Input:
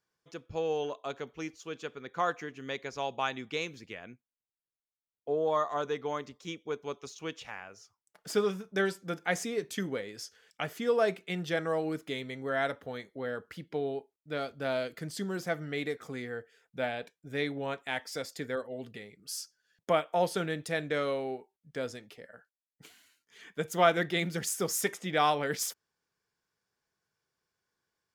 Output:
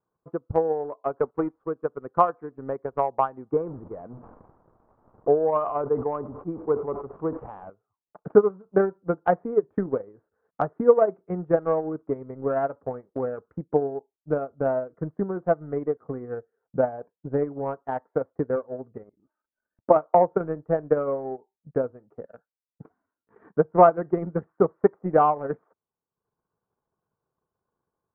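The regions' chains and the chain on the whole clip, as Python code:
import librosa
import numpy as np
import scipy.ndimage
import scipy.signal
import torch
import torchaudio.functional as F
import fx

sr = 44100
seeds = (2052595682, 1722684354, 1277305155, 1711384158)

y = fx.chain(x, sr, fx.highpass(hz=140.0, slope=24),
    fx.tilt_shelf(db=-3.0, hz=920.0),
    fx.leveller(passes=2), at=(1.2, 1.66))
y = fx.chain(y, sr, fx.zero_step(step_db=-44.5),
    fx.lowpass(hz=1400.0, slope=12),
    fx.sustainer(db_per_s=39.0), at=(3.51, 7.7))
y = fx.chain(y, sr, fx.comb(ms=3.3, depth=0.64),
    fx.level_steps(step_db=13), at=(19.03, 19.96))
y = scipy.signal.sosfilt(scipy.signal.butter(6, 1200.0, 'lowpass', fs=sr, output='sos'), y)
y = fx.dynamic_eq(y, sr, hz=210.0, q=2.3, threshold_db=-51.0, ratio=4.0, max_db=-4)
y = fx.transient(y, sr, attack_db=10, sustain_db=-9)
y = y * librosa.db_to_amplitude(5.0)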